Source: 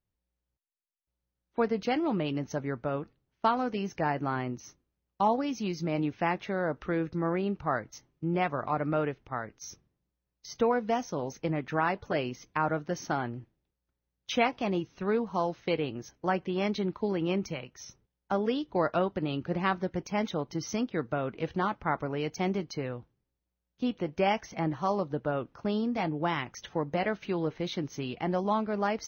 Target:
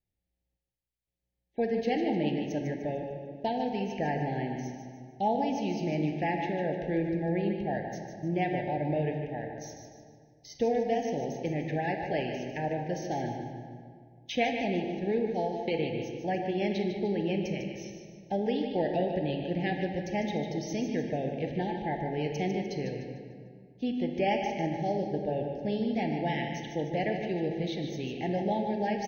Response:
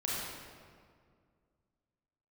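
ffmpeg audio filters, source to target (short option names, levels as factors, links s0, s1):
-filter_complex "[0:a]asuperstop=centerf=1200:order=20:qfactor=1.6,aecho=1:1:150|300|450|600|750:0.398|0.159|0.0637|0.0255|0.0102,asplit=2[s0][s1];[1:a]atrim=start_sample=2205,lowpass=4900[s2];[s1][s2]afir=irnorm=-1:irlink=0,volume=0.473[s3];[s0][s3]amix=inputs=2:normalize=0,volume=0.596"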